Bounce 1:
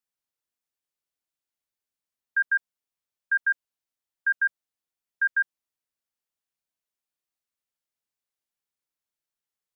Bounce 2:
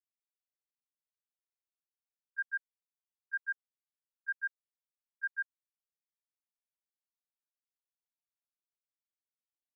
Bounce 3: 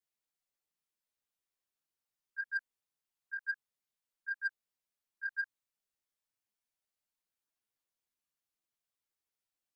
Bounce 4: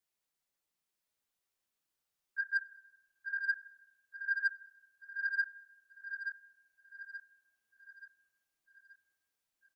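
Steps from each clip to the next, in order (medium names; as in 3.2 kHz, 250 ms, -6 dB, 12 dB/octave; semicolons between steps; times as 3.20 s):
gate -21 dBFS, range -22 dB; dynamic bell 1.6 kHz, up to +5 dB, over -39 dBFS, Q 2.4; compression, threshold -23 dBFS, peak gain reduction 4 dB; trim -8.5 dB
peak limiter -33 dBFS, peak gain reduction 5 dB; chorus voices 4, 0.48 Hz, delay 14 ms, depth 4.7 ms; saturation -32 dBFS, distortion -20 dB; trim +6.5 dB
feedback delay 879 ms, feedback 45%, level -7 dB; reverberation RT60 1.0 s, pre-delay 36 ms, DRR 16 dB; trim +3 dB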